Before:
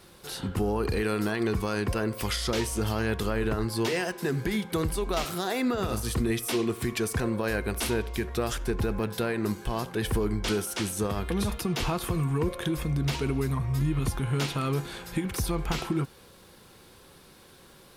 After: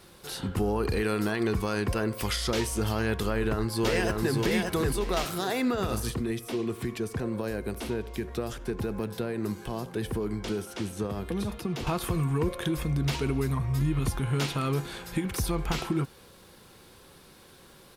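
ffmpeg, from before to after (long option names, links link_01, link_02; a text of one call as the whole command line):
ffmpeg -i in.wav -filter_complex "[0:a]asplit=2[link_01][link_02];[link_02]afade=type=in:start_time=3.25:duration=0.01,afade=type=out:start_time=4.34:duration=0.01,aecho=0:1:580|1160|1740|2320:0.749894|0.224968|0.0674905|0.0202471[link_03];[link_01][link_03]amix=inputs=2:normalize=0,asettb=1/sr,asplit=3[link_04][link_05][link_06];[link_04]atrim=end=6.104[link_07];[link_05]atrim=start=6.1:end=11.87,asetpts=PTS-STARTPTS,afade=type=in:duration=0.004:curve=qsin,afade=type=out:start_time=5.766:duration=0.004:curve=qsin,acrossover=split=94|680|4800[link_08][link_09][link_10][link_11];[link_08]acompressor=threshold=-45dB:ratio=3[link_12];[link_09]acompressor=threshold=-28dB:ratio=3[link_13];[link_10]acompressor=threshold=-44dB:ratio=3[link_14];[link_11]acompressor=threshold=-51dB:ratio=3[link_15];[link_12][link_13][link_14][link_15]amix=inputs=4:normalize=0[link_16];[link_06]atrim=start=11.866[link_17];[link_07][link_16]acrossfade=duration=0.004:curve1=hsin:curve2=qsin[link_18];[link_18][link_17]acrossfade=duration=0.004:curve1=qsin:curve2=hsin" out.wav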